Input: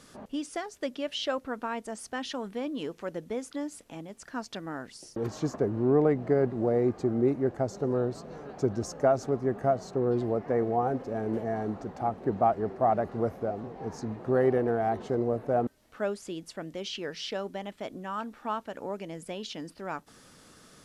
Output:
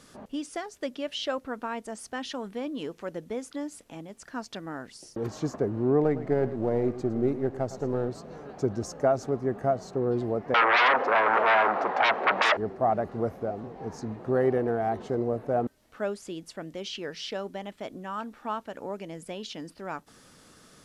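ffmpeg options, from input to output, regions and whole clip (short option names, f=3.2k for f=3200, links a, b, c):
-filter_complex "[0:a]asettb=1/sr,asplit=3[a][b][c];[a]atrim=end=6.034[d];[b]atrim=start=6.03:end=8.09,asetpts=PTS-STARTPTS,afade=t=in:d=0.004:c=qsin,afade=t=out:st=2.056:d=0.004:c=qsin,aeval=exprs='if(lt(val(0),0),0.708*val(0),val(0))':c=same,aecho=1:1:110:0.211,atrim=end_sample=90846[e];[c]atrim=start=8.086[f];[d][e]acrossfade=d=0.004:c1=hsin:c2=qsin[g];[g][f]acrossfade=d=0.004:c1=qsin:c2=hsin,asettb=1/sr,asplit=3[h][i][j];[h]atrim=end=10.544[k];[i]atrim=start=10.54:end=12.57,asetpts=PTS-STARTPTS,afade=t=in:d=0.004:c=qsin,afade=t=out:st=2.026:d=0.004:c=qsin,aeval=exprs='0.224*sin(PI/2*8.91*val(0)/0.224)':c=same,highpass=770,lowpass=2.1k[l];[j]atrim=start=12.566[m];[k][l]acrossfade=d=0.004:c1=hsin:c2=qsin[n];[n][m]acrossfade=d=0.004:c1=qsin:c2=hsin"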